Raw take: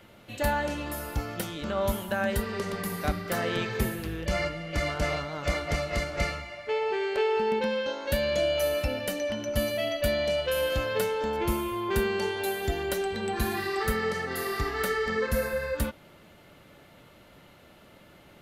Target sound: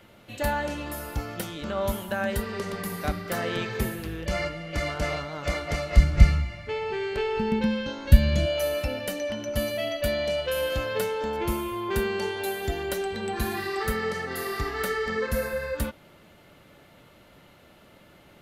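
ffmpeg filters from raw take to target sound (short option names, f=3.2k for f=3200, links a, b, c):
-filter_complex "[0:a]asplit=3[a][b][c];[a]afade=t=out:st=5.96:d=0.02[d];[b]asubboost=boost=9.5:cutoff=170,afade=t=in:st=5.96:d=0.02,afade=t=out:st=8.45:d=0.02[e];[c]afade=t=in:st=8.45:d=0.02[f];[d][e][f]amix=inputs=3:normalize=0"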